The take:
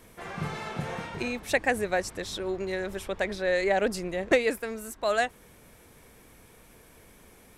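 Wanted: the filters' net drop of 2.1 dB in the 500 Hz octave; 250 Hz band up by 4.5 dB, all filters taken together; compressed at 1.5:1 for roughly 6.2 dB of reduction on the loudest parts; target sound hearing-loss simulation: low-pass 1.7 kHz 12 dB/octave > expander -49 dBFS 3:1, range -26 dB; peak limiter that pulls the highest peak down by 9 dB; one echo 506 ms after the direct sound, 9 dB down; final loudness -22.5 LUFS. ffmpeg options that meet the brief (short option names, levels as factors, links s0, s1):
-af "equalizer=f=250:t=o:g=7.5,equalizer=f=500:t=o:g=-4.5,acompressor=threshold=0.02:ratio=1.5,alimiter=limit=0.0631:level=0:latency=1,lowpass=1700,aecho=1:1:506:0.355,agate=range=0.0501:threshold=0.00355:ratio=3,volume=4.73"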